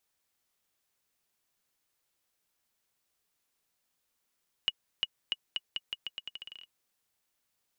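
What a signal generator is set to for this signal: bouncing ball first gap 0.35 s, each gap 0.83, 2900 Hz, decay 39 ms -15 dBFS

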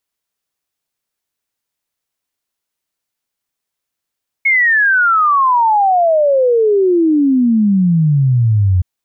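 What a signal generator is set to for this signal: log sweep 2200 Hz -> 88 Hz 4.37 s -8.5 dBFS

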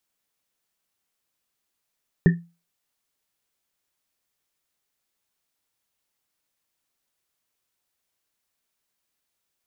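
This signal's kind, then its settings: Risset drum, pitch 170 Hz, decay 0.30 s, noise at 1800 Hz, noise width 150 Hz, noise 15%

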